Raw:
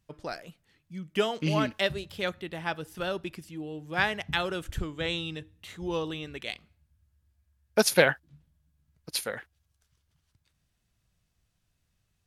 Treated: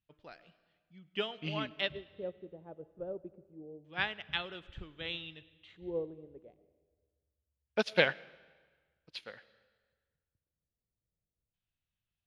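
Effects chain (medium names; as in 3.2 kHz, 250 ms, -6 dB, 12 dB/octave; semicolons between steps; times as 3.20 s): LFO low-pass square 0.26 Hz 500–3200 Hz; algorithmic reverb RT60 1.5 s, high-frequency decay 0.9×, pre-delay 60 ms, DRR 15 dB; upward expansion 1.5:1, over -36 dBFS; trim -6.5 dB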